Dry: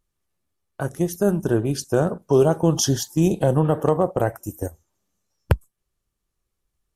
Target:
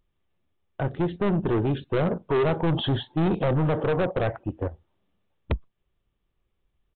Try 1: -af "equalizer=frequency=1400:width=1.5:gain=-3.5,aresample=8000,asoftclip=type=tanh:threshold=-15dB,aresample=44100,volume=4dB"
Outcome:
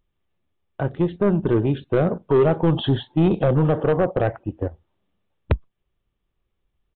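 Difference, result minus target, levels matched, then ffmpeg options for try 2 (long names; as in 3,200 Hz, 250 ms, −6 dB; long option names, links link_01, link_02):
soft clipping: distortion −6 dB
-af "equalizer=frequency=1400:width=1.5:gain=-3.5,aresample=8000,asoftclip=type=tanh:threshold=-23.5dB,aresample=44100,volume=4dB"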